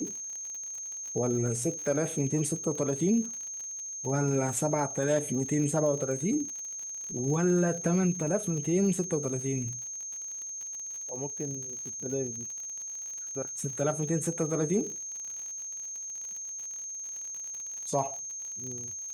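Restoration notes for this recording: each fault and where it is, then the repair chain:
surface crackle 57 per second −37 dBFS
whistle 6,400 Hz −36 dBFS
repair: click removal
notch filter 6,400 Hz, Q 30

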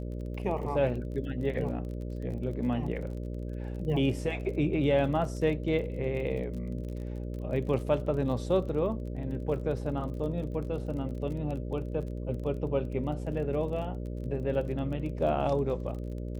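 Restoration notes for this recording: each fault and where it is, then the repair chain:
mains buzz 60 Hz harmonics 10 −36 dBFS
surface crackle 29 per second −39 dBFS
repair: click removal
hum removal 60 Hz, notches 10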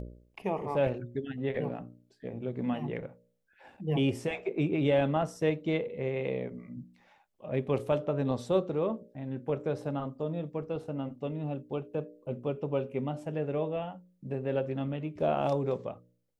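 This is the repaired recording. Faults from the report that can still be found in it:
none of them is left

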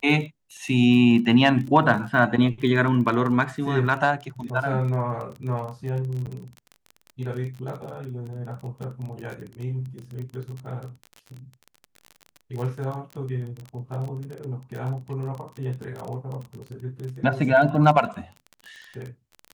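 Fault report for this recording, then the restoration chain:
surface crackle 27 per second −31 dBFS
0:06.26–0:06.27: drop-out 8.8 ms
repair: click removal
repair the gap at 0:06.26, 8.8 ms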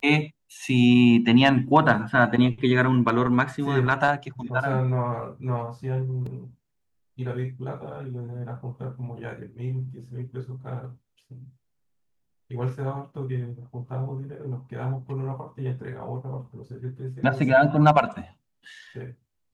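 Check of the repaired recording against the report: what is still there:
none of them is left

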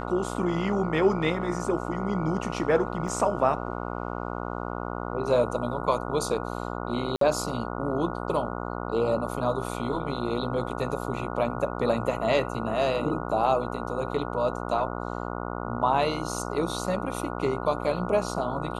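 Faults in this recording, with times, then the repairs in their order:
mains buzz 60 Hz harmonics 24 −33 dBFS
0:03.08: drop-out 2.8 ms
0:07.16–0:07.21: drop-out 53 ms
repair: hum removal 60 Hz, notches 24
repair the gap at 0:03.08, 2.8 ms
repair the gap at 0:07.16, 53 ms

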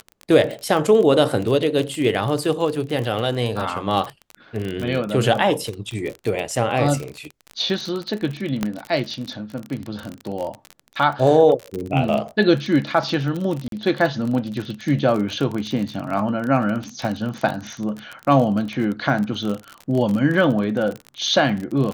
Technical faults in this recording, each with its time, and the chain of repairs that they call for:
surface crackle 34 per second −24 dBFS
0:08.63: click −8 dBFS
0:13.68–0:13.72: drop-out 42 ms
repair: click removal
repair the gap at 0:13.68, 42 ms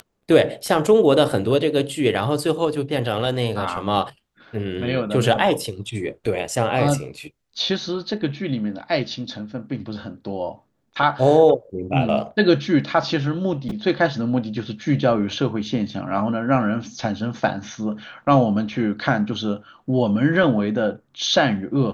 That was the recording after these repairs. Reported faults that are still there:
none of them is left

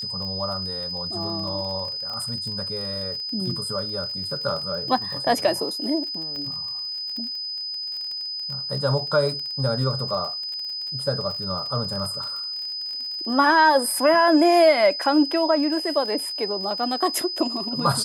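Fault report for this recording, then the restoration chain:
surface crackle 33 per second −31 dBFS
whistle 5,000 Hz −28 dBFS
0:06.36: click −23 dBFS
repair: click removal
notch filter 5,000 Hz, Q 30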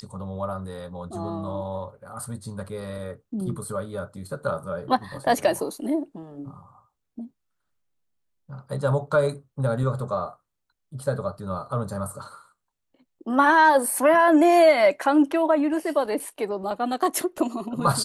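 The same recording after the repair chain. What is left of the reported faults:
none of them is left

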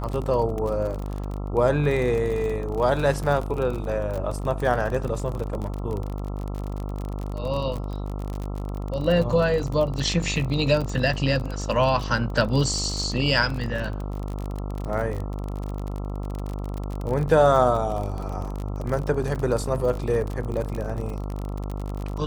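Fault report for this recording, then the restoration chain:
mains buzz 50 Hz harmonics 27 −30 dBFS
surface crackle 38 per second −28 dBFS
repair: click removal
hum removal 50 Hz, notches 27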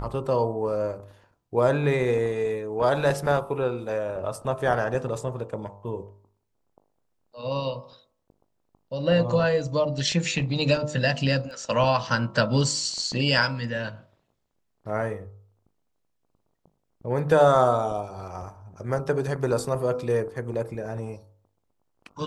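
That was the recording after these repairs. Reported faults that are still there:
none of them is left

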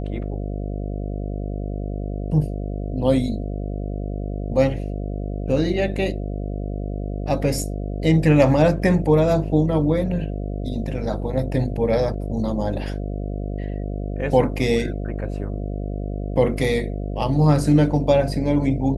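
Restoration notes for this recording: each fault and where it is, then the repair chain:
mains buzz 50 Hz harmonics 14 −27 dBFS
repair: hum removal 50 Hz, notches 14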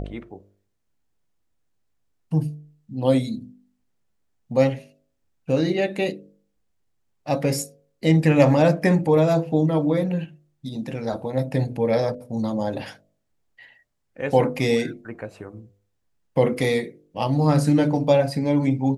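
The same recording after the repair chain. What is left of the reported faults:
none of them is left

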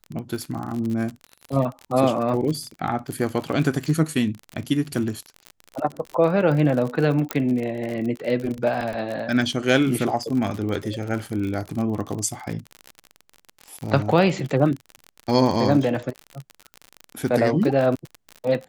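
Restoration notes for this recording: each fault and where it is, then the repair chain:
surface crackle 45 per second −27 dBFS
0:07.31: click −7 dBFS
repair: click removal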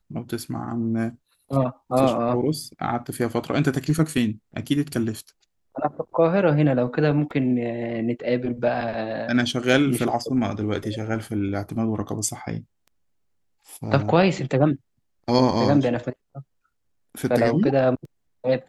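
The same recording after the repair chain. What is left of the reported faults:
0:07.31: click

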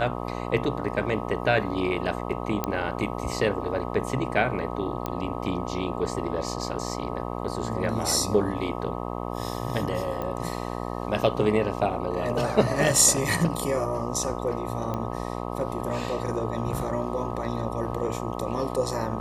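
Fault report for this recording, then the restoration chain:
mains buzz 60 Hz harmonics 21 −32 dBFS
0:02.64: click −11 dBFS
0:05.06: click −15 dBFS
0:10.22: click −19 dBFS
0:14.94: click −18 dBFS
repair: click removal
hum removal 60 Hz, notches 21

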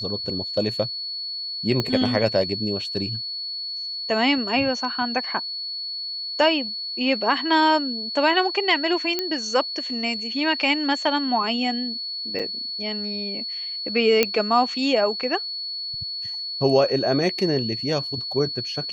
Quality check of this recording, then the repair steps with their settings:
whistle 4,400 Hz −28 dBFS
0:01.80: click −10 dBFS
0:09.19: click −9 dBFS
0:12.39–0:12.40: drop-out 5.9 ms
0:14.23: click −3 dBFS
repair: click removal
notch filter 4,400 Hz, Q 30
repair the gap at 0:12.39, 5.9 ms

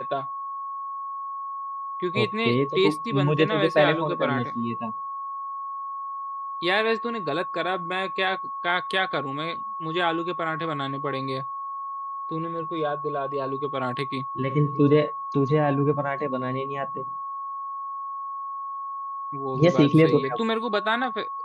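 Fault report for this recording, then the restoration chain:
whistle 1,100 Hz −30 dBFS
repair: notch filter 1,100 Hz, Q 30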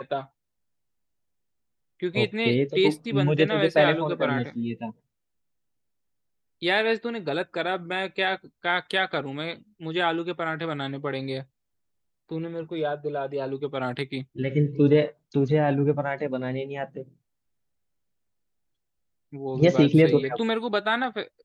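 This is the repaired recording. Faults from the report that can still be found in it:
none of them is left

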